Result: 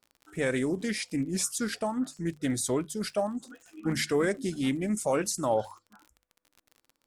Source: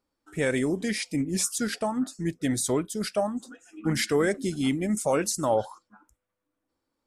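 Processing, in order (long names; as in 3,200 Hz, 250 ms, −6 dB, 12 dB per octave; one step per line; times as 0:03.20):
mains-hum notches 50/100/150 Hz
surface crackle 42 per second −39 dBFS
highs frequency-modulated by the lows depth 0.1 ms
level −2.5 dB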